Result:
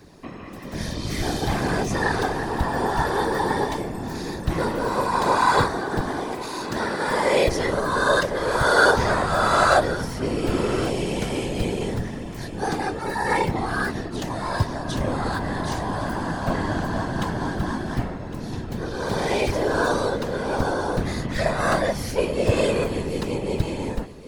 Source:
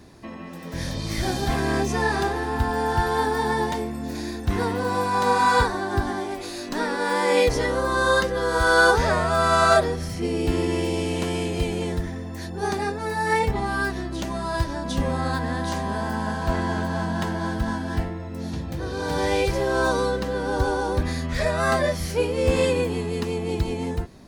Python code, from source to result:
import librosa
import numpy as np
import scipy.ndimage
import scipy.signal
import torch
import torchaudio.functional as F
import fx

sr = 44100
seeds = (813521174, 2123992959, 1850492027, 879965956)

y = fx.whisperise(x, sr, seeds[0])
y = y + 10.0 ** (-16.0 / 20.0) * np.pad(y, (int(1107 * sr / 1000.0), 0))[:len(y)]